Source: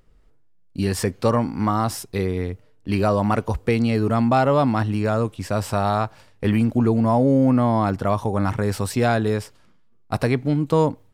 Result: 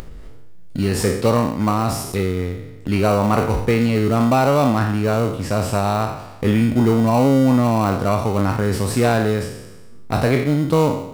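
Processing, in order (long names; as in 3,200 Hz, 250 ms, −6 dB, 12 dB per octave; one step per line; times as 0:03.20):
peak hold with a decay on every bin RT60 0.67 s
in parallel at −10 dB: sample-rate reduction 1,700 Hz, jitter 0%
on the sum: upward compression, threshold −20 dBFS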